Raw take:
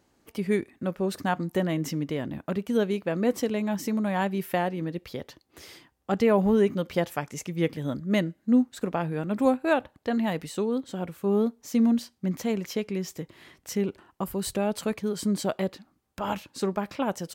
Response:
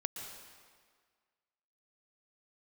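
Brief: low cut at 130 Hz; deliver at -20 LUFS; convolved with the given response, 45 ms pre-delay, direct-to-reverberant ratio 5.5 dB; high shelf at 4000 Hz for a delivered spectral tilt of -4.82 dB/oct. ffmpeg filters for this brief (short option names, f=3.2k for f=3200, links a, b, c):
-filter_complex "[0:a]highpass=130,highshelf=f=4k:g=-7,asplit=2[a][b];[1:a]atrim=start_sample=2205,adelay=45[c];[b][c]afir=irnorm=-1:irlink=0,volume=-6dB[d];[a][d]amix=inputs=2:normalize=0,volume=7.5dB"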